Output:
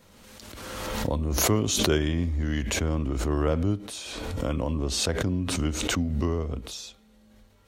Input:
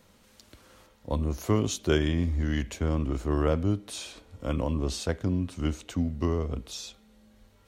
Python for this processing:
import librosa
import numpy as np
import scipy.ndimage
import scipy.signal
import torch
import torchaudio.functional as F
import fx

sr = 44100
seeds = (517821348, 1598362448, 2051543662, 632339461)

y = fx.pre_swell(x, sr, db_per_s=29.0)